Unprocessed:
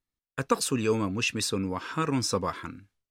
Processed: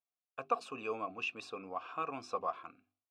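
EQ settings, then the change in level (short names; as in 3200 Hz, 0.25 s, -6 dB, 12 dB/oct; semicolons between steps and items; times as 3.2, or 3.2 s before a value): vowel filter a; high shelf 8400 Hz -4.5 dB; notches 50/100/150/200/250/300/350/400 Hz; +3.5 dB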